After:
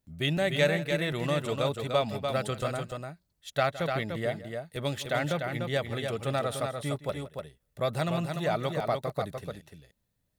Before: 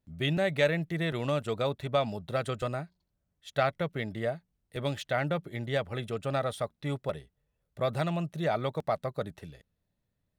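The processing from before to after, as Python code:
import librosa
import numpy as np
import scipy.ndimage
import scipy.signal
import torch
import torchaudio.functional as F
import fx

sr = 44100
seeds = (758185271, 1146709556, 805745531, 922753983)

y = fx.high_shelf(x, sr, hz=5000.0, db=8.0)
y = fx.echo_multitap(y, sr, ms=(165, 296), db=(-16.5, -5.5))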